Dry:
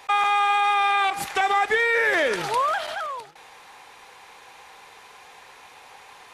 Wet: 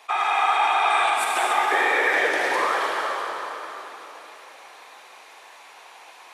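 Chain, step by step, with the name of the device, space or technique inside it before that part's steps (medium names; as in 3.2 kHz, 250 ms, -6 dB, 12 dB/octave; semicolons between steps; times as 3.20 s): whispering ghost (whisper effect; high-pass 420 Hz 12 dB/octave; reverberation RT60 3.7 s, pre-delay 43 ms, DRR -2.5 dB); 0.90–1.53 s: peaking EQ 8.6 kHz +10 dB 0.33 oct; trim -3.5 dB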